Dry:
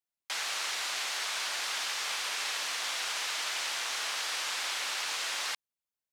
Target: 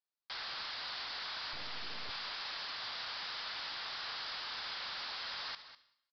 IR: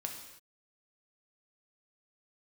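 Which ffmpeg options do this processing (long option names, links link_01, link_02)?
-filter_complex "[0:a]highpass=frequency=1200:poles=1,equalizer=frequency=2500:width=1.3:gain=-9.5,asoftclip=type=tanh:threshold=-38dB,asettb=1/sr,asplit=3[link_01][link_02][link_03];[link_01]atrim=end=1.534[link_04];[link_02]atrim=start=1.53:end=2.1,asetpts=PTS-STARTPTS,afade=type=in:duration=0.004:curve=qsin,afade=type=out:start_time=0.566:duration=0.004:curve=qsin,acrusher=bits=4:dc=4:mix=0:aa=0.000001[link_05];[link_03]atrim=start=2.096[link_06];[link_04][link_05]acrossfade=duration=0.004:curve1=hsin:curve2=qsin[link_07];[link_07][link_06]acrossfade=duration=0.004:curve1=qsin:curve2=hsin,aecho=1:1:200:0.211,asplit=2[link_08][link_09];[1:a]atrim=start_sample=2205,highshelf=frequency=3500:gain=5,adelay=71[link_10];[link_09][link_10]afir=irnorm=-1:irlink=0,volume=-16.5dB[link_11];[link_08][link_11]amix=inputs=2:normalize=0,aresample=11025,aresample=44100,volume=2.5dB"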